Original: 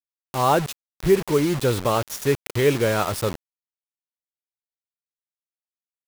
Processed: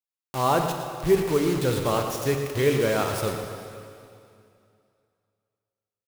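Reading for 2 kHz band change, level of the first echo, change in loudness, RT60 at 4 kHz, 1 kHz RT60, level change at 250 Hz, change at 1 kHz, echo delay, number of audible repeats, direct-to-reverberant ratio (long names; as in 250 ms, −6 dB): −2.5 dB, −10.5 dB, −2.5 dB, 2.3 s, 2.5 s, −2.0 dB, −2.5 dB, 115 ms, 1, 3.5 dB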